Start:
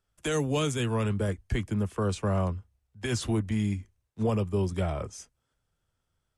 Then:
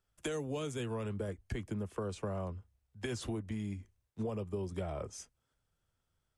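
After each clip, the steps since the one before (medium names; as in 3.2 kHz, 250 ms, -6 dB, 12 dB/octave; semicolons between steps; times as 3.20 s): dynamic bell 490 Hz, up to +5 dB, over -42 dBFS, Q 0.79; compression, threshold -32 dBFS, peak gain reduction 12 dB; trim -3 dB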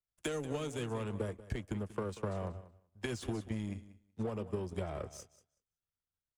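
feedback delay 187 ms, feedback 24%, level -12 dB; power-law waveshaper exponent 1.4; trim +3 dB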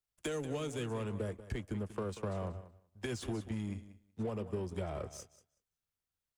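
saturation -29.5 dBFS, distortion -17 dB; trim +1.5 dB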